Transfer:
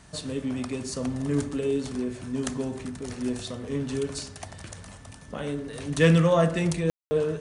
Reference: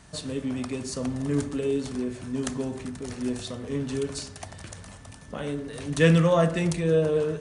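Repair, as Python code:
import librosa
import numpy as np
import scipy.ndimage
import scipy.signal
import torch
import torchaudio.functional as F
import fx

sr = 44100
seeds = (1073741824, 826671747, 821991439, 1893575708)

y = fx.fix_declip(x, sr, threshold_db=-10.0)
y = fx.fix_ambience(y, sr, seeds[0], print_start_s=4.82, print_end_s=5.32, start_s=6.9, end_s=7.11)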